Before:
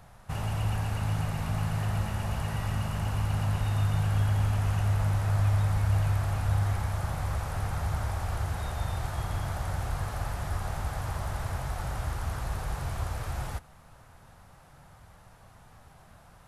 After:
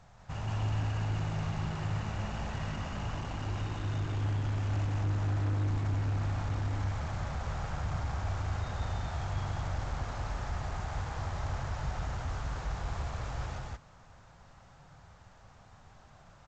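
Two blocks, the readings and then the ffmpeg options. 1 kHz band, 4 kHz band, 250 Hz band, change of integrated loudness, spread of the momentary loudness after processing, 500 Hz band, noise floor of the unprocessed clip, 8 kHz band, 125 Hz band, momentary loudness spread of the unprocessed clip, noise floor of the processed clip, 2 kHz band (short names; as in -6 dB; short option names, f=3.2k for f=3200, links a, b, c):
-3.5 dB, -3.5 dB, -2.5 dB, -4.5 dB, 6 LU, -3.0 dB, -55 dBFS, -7.5 dB, -5.0 dB, 8 LU, -57 dBFS, -3.5 dB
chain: -af "volume=27dB,asoftclip=hard,volume=-27dB,aecho=1:1:84.55|177.8:0.282|0.891,volume=-5dB" -ar 16000 -c:a g722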